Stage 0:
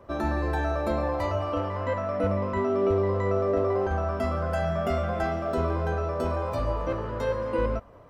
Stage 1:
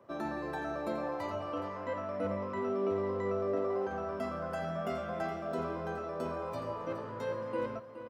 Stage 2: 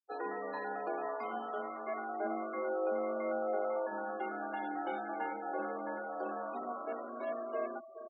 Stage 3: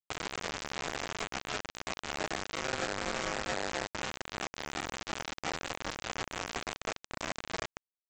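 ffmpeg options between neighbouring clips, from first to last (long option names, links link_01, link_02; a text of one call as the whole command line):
ffmpeg -i in.wav -af "highpass=frequency=120:width=0.5412,highpass=frequency=120:width=1.3066,aecho=1:1:419:0.266,volume=-8dB" out.wav
ffmpeg -i in.wav -af "afftfilt=real='re*gte(hypot(re,im),0.01)':imag='im*gte(hypot(re,im),0.01)':win_size=1024:overlap=0.75,afreqshift=130,volume=-2dB" out.wav
ffmpeg -i in.wav -af "alimiter=level_in=9.5dB:limit=-24dB:level=0:latency=1:release=253,volume=-9.5dB,aresample=16000,acrusher=bits=5:mix=0:aa=0.000001,aresample=44100,volume=6.5dB" out.wav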